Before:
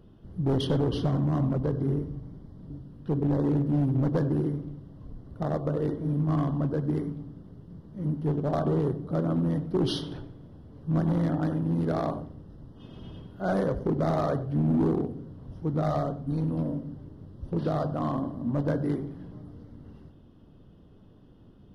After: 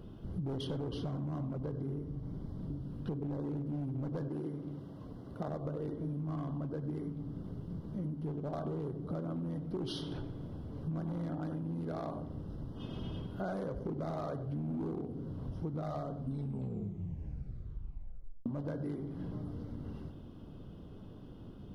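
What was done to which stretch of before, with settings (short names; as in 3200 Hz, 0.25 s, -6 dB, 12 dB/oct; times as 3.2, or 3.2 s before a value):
4.28–5.48 HPF 260 Hz 6 dB/oct
16.18 tape stop 2.28 s
whole clip: notch 1800 Hz, Q 11; limiter -22 dBFS; compressor 8:1, threshold -40 dBFS; gain +4.5 dB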